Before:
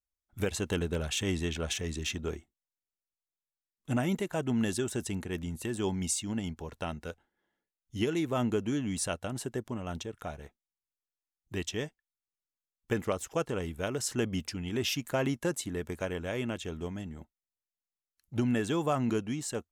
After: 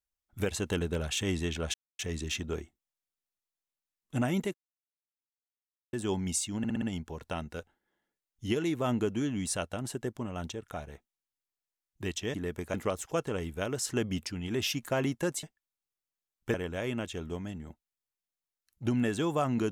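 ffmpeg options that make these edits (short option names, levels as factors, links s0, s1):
-filter_complex "[0:a]asplit=12[s0][s1][s2][s3][s4][s5][s6][s7][s8][s9][s10][s11];[s0]atrim=end=1.74,asetpts=PTS-STARTPTS,afade=t=out:st=1.736:d=0.004:c=hsin,apad=pad_dur=0.25[s12];[s1]atrim=start=1.74:end=4.29,asetpts=PTS-STARTPTS,afade=t=in:d=0.004:c=hsin,afade=t=out:st=2.546:d=0.004:c=hsin[s13];[s2]atrim=start=4.29:end=5.68,asetpts=PTS-STARTPTS,volume=0[s14];[s3]atrim=start=5.68:end=6.392,asetpts=PTS-STARTPTS,afade=t=in:d=0.004:c=hsin[s15];[s4]atrim=start=6.328:end=6.392[s16];[s5]atrim=start=6.328:end=6.392[s17];[s6]atrim=start=6.328:end=6.392[s18];[s7]atrim=start=6.328:end=11.852[s19];[s8]atrim=start=15.648:end=16.052[s20];[s9]atrim=start=12.958:end=15.652[s21];[s10]atrim=start=11.848:end=12.962[s22];[s11]atrim=start=16.048[s23];[s12][s13][s14][s15]concat=n=4:v=0:a=1[s24];[s24][s16]acrossfade=d=0.004:c1=hsin:c2=hsin[s25];[s25][s17]acrossfade=d=0.004:c1=hsin:c2=hsin[s26];[s26][s18]acrossfade=d=0.004:c1=hsin:c2=hsin[s27];[s27][s19]acrossfade=d=0.004:c1=hsin:c2=hsin[s28];[s28][s20]acrossfade=d=0.004:c1=hsin:c2=hsin[s29];[s29][s21]acrossfade=d=0.004:c1=hsin:c2=hsin[s30];[s30][s22]acrossfade=d=0.004:c1=hsin:c2=hsin[s31];[s31][s23]acrossfade=d=0.004:c1=hsin:c2=hsin"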